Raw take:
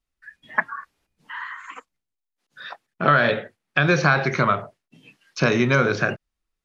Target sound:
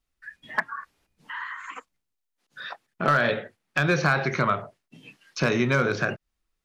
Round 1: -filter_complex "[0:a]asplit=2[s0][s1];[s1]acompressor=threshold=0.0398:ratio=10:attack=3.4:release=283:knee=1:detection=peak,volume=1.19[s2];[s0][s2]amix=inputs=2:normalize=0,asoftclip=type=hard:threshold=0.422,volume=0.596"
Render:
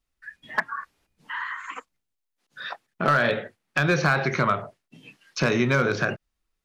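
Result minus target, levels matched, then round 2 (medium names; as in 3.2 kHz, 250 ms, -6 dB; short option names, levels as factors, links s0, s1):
compression: peak gain reduction -7.5 dB
-filter_complex "[0:a]asplit=2[s0][s1];[s1]acompressor=threshold=0.015:ratio=10:attack=3.4:release=283:knee=1:detection=peak,volume=1.19[s2];[s0][s2]amix=inputs=2:normalize=0,asoftclip=type=hard:threshold=0.422,volume=0.596"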